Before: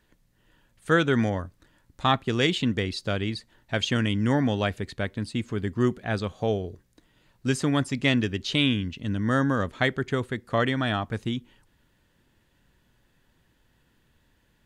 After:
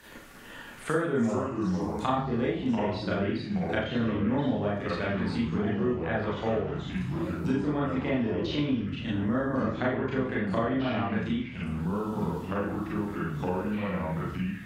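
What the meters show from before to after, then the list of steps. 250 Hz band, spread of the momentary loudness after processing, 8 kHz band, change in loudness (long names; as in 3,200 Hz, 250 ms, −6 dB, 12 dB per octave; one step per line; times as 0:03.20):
0.0 dB, 5 LU, can't be measured, −3.5 dB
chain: treble cut that deepens with the level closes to 870 Hz, closed at −22 dBFS
spectral tilt +2 dB per octave
four-comb reverb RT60 0.43 s, combs from 27 ms, DRR −7.5 dB
delay with pitch and tempo change per echo 155 ms, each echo −4 semitones, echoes 3, each echo −6 dB
multiband upward and downward compressor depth 70%
level −7.5 dB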